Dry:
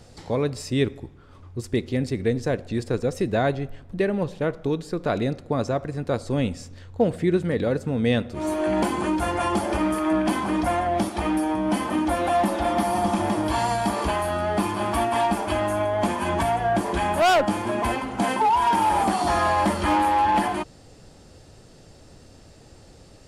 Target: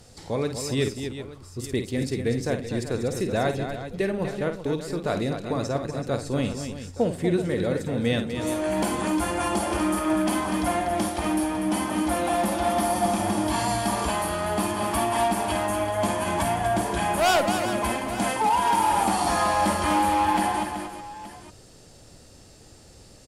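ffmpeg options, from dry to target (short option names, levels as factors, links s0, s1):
-af "aemphasis=mode=production:type=cd,aecho=1:1:52|244|380|874:0.376|0.398|0.266|0.15,volume=0.708"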